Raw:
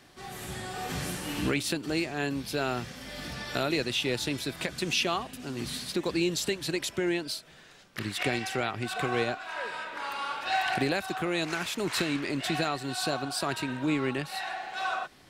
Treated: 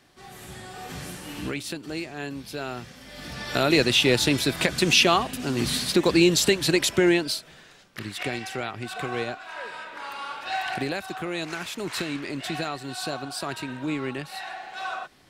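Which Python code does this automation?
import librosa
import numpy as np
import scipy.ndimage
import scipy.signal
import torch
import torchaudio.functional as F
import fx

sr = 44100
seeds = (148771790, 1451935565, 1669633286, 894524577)

y = fx.gain(x, sr, db=fx.line((3.08, -3.0), (3.78, 9.5), (7.05, 9.5), (8.03, -1.0)))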